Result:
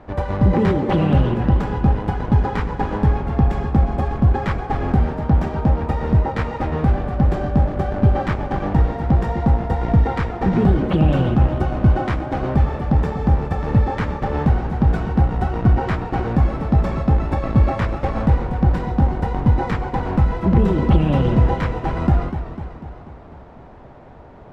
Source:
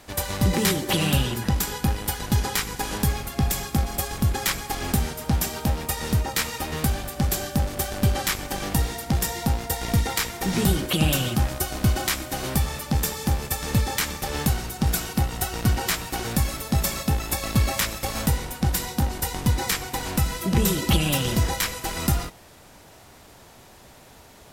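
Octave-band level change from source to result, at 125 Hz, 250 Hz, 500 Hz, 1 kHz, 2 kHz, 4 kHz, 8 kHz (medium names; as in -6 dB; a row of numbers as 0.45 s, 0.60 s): +7.5 dB, +7.0 dB, +7.5 dB, +6.5 dB, -1.5 dB, -12.5 dB, under -25 dB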